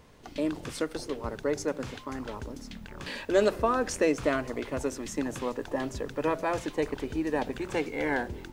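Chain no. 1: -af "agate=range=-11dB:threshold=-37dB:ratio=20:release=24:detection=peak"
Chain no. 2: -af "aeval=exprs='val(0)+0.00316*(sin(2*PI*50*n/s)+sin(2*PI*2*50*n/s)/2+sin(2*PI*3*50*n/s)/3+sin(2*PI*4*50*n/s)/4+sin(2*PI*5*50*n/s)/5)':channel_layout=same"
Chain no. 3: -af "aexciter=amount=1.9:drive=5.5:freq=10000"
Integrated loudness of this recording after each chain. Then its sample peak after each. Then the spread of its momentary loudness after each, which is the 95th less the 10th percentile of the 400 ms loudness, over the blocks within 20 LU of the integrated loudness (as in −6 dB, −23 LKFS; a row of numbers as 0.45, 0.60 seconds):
−31.0, −31.0, −31.0 LKFS; −11.0, −11.5, −11.0 dBFS; 15, 12, 12 LU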